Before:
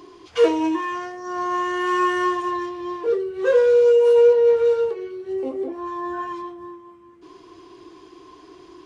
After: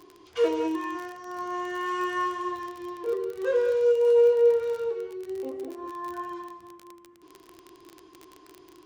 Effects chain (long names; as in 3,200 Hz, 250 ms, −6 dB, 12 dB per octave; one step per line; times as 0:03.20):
reverb whose tail is shaped and stops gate 230 ms rising, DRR 8 dB
surface crackle 36 per second −24 dBFS
level −8 dB